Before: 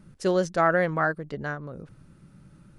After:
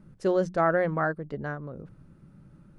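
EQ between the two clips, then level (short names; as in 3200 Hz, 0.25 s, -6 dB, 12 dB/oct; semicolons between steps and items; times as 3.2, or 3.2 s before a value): high shelf 2000 Hz -11.5 dB; notches 60/120/180 Hz; 0.0 dB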